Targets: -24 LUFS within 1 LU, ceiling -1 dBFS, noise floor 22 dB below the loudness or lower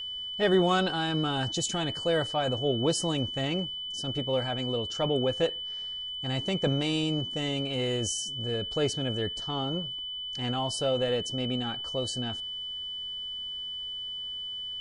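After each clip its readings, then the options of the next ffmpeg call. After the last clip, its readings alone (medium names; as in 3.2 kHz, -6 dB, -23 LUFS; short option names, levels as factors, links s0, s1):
steady tone 3 kHz; tone level -34 dBFS; loudness -29.5 LUFS; peak level -12.0 dBFS; loudness target -24.0 LUFS
-> -af "bandreject=f=3000:w=30"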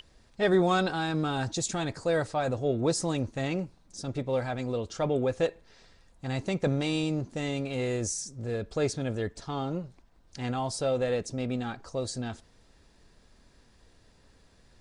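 steady tone not found; loudness -30.5 LUFS; peak level -12.5 dBFS; loudness target -24.0 LUFS
-> -af "volume=2.11"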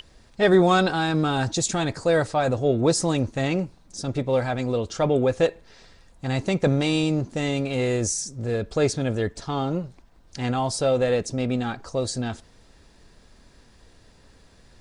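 loudness -24.0 LUFS; peak level -6.0 dBFS; noise floor -55 dBFS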